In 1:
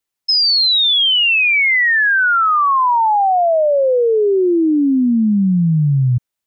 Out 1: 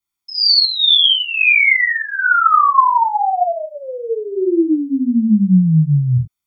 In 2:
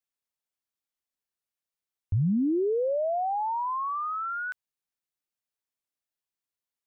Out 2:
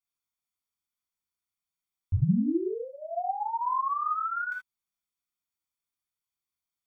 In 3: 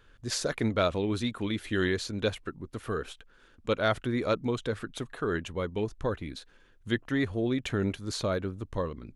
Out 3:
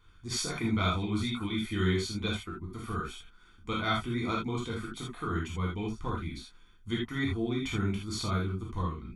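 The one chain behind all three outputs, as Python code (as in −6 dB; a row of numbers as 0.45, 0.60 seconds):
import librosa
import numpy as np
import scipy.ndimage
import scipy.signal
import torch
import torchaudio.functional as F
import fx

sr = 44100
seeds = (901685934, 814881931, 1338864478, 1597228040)

y = x + 0.81 * np.pad(x, (int(0.9 * sr / 1000.0), 0))[:len(x)]
y = fx.rev_gated(y, sr, seeds[0], gate_ms=100, shape='flat', drr_db=-4.0)
y = y * 10.0 ** (-8.0 / 20.0)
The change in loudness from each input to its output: −0.5, −1.5, −1.5 LU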